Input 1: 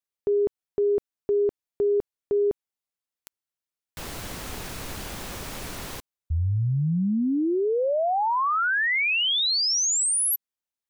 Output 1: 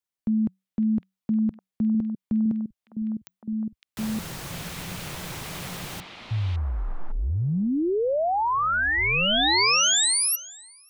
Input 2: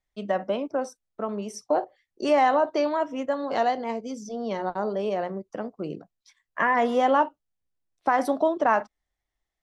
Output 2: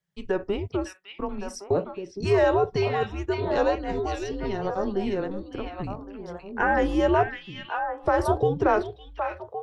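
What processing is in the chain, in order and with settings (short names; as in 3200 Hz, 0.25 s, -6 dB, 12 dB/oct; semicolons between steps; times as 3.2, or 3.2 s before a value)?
bell 150 Hz -3.5 dB 1.3 oct; delay with a stepping band-pass 0.558 s, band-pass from 3000 Hz, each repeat -1.4 oct, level -0.5 dB; frequency shift -190 Hz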